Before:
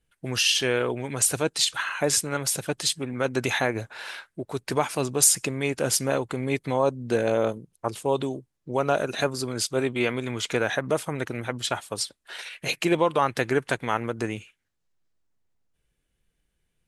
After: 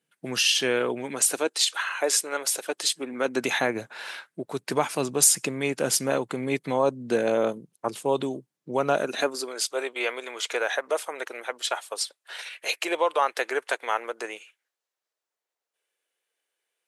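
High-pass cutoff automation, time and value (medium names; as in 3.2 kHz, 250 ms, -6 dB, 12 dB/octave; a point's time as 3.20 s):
high-pass 24 dB/octave
0.96 s 160 Hz
1.59 s 360 Hz
2.65 s 360 Hz
3.70 s 150 Hz
8.95 s 150 Hz
9.60 s 450 Hz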